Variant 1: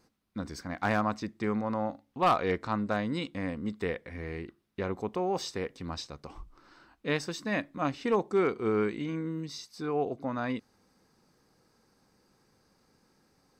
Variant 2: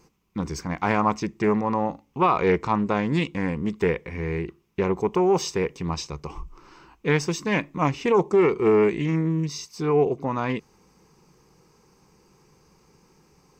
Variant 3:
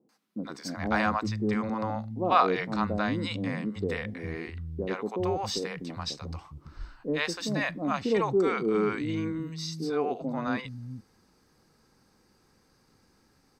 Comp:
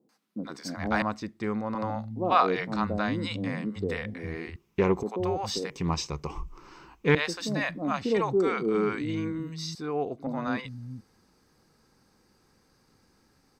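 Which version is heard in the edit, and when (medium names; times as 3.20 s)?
3
1.02–1.75 s: from 1
4.56–5.03 s: from 2
5.70–7.15 s: from 2
9.75–10.27 s: from 1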